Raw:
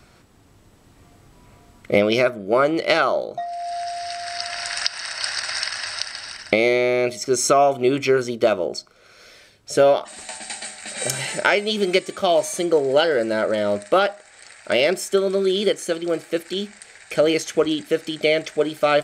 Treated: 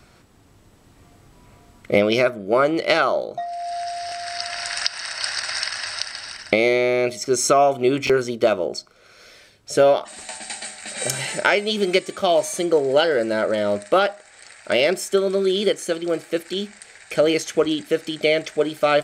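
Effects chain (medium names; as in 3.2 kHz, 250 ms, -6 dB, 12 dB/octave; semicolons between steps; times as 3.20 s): buffer glitch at 4.07/8.05 s, samples 1024, times 1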